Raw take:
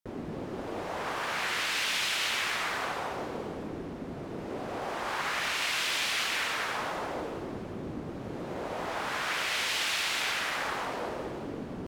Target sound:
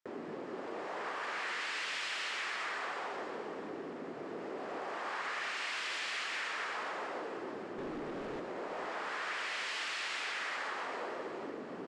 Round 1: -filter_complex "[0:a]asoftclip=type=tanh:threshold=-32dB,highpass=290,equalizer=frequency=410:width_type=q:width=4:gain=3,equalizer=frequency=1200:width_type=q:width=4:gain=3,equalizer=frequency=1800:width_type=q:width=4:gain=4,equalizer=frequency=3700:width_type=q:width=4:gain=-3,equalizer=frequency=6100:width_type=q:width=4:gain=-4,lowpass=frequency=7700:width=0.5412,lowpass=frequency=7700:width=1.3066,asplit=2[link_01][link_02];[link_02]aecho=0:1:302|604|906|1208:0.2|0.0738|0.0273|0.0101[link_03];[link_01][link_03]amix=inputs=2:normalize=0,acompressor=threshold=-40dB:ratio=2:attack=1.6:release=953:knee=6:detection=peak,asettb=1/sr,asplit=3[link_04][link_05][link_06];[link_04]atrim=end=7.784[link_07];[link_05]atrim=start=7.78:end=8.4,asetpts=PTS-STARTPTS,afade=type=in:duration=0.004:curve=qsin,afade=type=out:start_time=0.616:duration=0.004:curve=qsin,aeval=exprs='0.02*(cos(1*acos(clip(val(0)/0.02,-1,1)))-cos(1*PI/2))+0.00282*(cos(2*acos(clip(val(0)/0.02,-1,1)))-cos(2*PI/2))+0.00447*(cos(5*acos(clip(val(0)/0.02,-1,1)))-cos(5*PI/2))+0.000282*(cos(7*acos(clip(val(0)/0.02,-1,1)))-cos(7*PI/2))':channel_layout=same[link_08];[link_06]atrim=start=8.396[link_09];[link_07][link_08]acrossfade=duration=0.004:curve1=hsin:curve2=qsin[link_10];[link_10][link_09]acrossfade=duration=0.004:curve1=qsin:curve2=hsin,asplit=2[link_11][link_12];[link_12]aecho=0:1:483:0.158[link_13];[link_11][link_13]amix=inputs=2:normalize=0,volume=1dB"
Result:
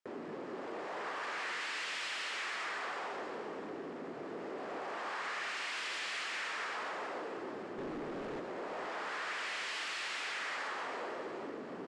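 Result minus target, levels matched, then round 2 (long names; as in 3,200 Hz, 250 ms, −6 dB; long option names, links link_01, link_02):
soft clipping: distortion +8 dB
-filter_complex "[0:a]asoftclip=type=tanh:threshold=-25dB,highpass=290,equalizer=frequency=410:width_type=q:width=4:gain=3,equalizer=frequency=1200:width_type=q:width=4:gain=3,equalizer=frequency=1800:width_type=q:width=4:gain=4,equalizer=frequency=3700:width_type=q:width=4:gain=-3,equalizer=frequency=6100:width_type=q:width=4:gain=-4,lowpass=frequency=7700:width=0.5412,lowpass=frequency=7700:width=1.3066,asplit=2[link_01][link_02];[link_02]aecho=0:1:302|604|906|1208:0.2|0.0738|0.0273|0.0101[link_03];[link_01][link_03]amix=inputs=2:normalize=0,acompressor=threshold=-40dB:ratio=2:attack=1.6:release=953:knee=6:detection=peak,asettb=1/sr,asplit=3[link_04][link_05][link_06];[link_04]atrim=end=7.784[link_07];[link_05]atrim=start=7.78:end=8.4,asetpts=PTS-STARTPTS,afade=type=in:duration=0.004:curve=qsin,afade=type=out:start_time=0.616:duration=0.004:curve=qsin,aeval=exprs='0.02*(cos(1*acos(clip(val(0)/0.02,-1,1)))-cos(1*PI/2))+0.00282*(cos(2*acos(clip(val(0)/0.02,-1,1)))-cos(2*PI/2))+0.00447*(cos(5*acos(clip(val(0)/0.02,-1,1)))-cos(5*PI/2))+0.000282*(cos(7*acos(clip(val(0)/0.02,-1,1)))-cos(7*PI/2))':channel_layout=same[link_08];[link_06]atrim=start=8.396[link_09];[link_07][link_08]acrossfade=duration=0.004:curve1=hsin:curve2=qsin[link_10];[link_10][link_09]acrossfade=duration=0.004:curve1=qsin:curve2=hsin,asplit=2[link_11][link_12];[link_12]aecho=0:1:483:0.158[link_13];[link_11][link_13]amix=inputs=2:normalize=0,volume=1dB"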